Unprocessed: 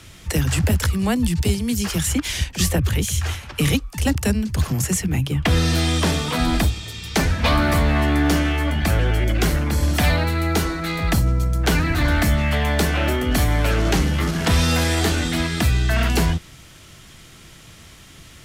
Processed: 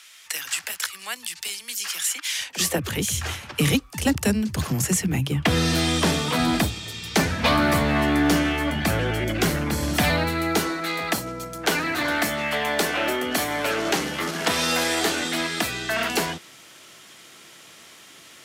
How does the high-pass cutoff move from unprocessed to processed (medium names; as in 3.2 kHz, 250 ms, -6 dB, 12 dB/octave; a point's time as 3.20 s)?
2.34 s 1.5 kHz
2.56 s 360 Hz
3.16 s 130 Hz
10.25 s 130 Hz
10.90 s 340 Hz